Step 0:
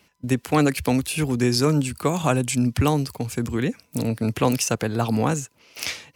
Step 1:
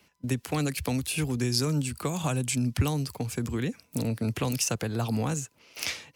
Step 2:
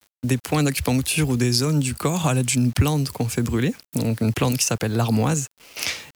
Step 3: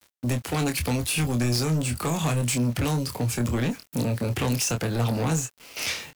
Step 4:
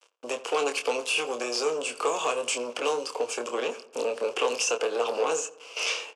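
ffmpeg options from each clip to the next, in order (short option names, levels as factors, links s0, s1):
-filter_complex "[0:a]acrossover=split=160|3000[s0][s1][s2];[s1]acompressor=threshold=0.0501:ratio=6[s3];[s0][s3][s2]amix=inputs=3:normalize=0,volume=0.708"
-filter_complex "[0:a]asplit=2[s0][s1];[s1]alimiter=limit=0.126:level=0:latency=1:release=370,volume=1.06[s2];[s0][s2]amix=inputs=2:normalize=0,acrusher=bits=7:mix=0:aa=0.000001,volume=1.26"
-filter_complex "[0:a]asoftclip=type=tanh:threshold=0.0794,asplit=2[s0][s1];[s1]adelay=25,volume=0.447[s2];[s0][s2]amix=inputs=2:normalize=0"
-filter_complex "[0:a]highpass=f=420:w=0.5412,highpass=f=420:w=1.3066,equalizer=f=460:t=q:w=4:g=10,equalizer=f=1100:t=q:w=4:g=6,equalizer=f=1900:t=q:w=4:g=-10,equalizer=f=2800:t=q:w=4:g=8,equalizer=f=4000:t=q:w=4:g=-7,lowpass=f=7900:w=0.5412,lowpass=f=7900:w=1.3066,asplit=2[s0][s1];[s1]adelay=86,lowpass=f=1900:p=1,volume=0.158,asplit=2[s2][s3];[s3]adelay=86,lowpass=f=1900:p=1,volume=0.5,asplit=2[s4][s5];[s5]adelay=86,lowpass=f=1900:p=1,volume=0.5,asplit=2[s6][s7];[s7]adelay=86,lowpass=f=1900:p=1,volume=0.5[s8];[s0][s2][s4][s6][s8]amix=inputs=5:normalize=0"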